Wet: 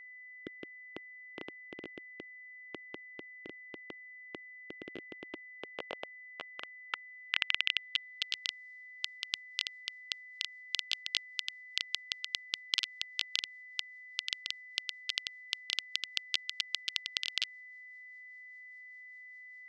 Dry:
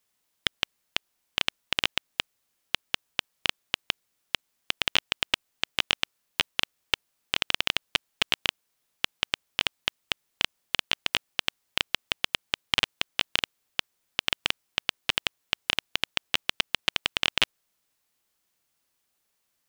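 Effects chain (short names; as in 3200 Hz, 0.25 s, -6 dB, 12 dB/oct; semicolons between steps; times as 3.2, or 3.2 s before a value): rotary speaker horn 0.65 Hz, later 5 Hz, at 8.48; band-pass sweep 340 Hz -> 4700 Hz, 5.4–8.35; whine 2000 Hz -50 dBFS; gain +1.5 dB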